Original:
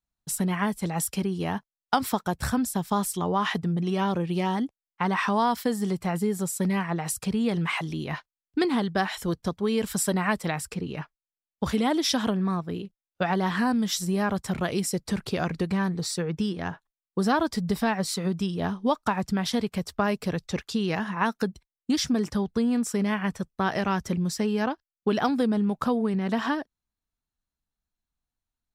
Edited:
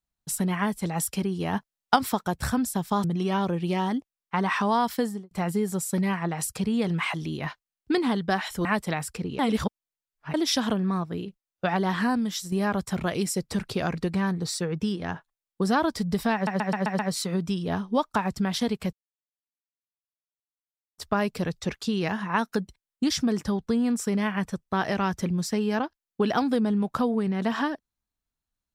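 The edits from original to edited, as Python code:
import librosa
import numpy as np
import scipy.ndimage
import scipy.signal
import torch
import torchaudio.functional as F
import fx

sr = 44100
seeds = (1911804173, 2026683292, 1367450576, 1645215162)

y = fx.studio_fade_out(x, sr, start_s=5.68, length_s=0.3)
y = fx.edit(y, sr, fx.clip_gain(start_s=1.53, length_s=0.43, db=3.5),
    fx.cut(start_s=3.04, length_s=0.67),
    fx.cut(start_s=9.32, length_s=0.9),
    fx.reverse_span(start_s=10.96, length_s=0.95),
    fx.fade_out_to(start_s=13.64, length_s=0.45, floor_db=-7.5),
    fx.stutter(start_s=17.91, slice_s=0.13, count=6),
    fx.insert_silence(at_s=19.85, length_s=2.05), tone=tone)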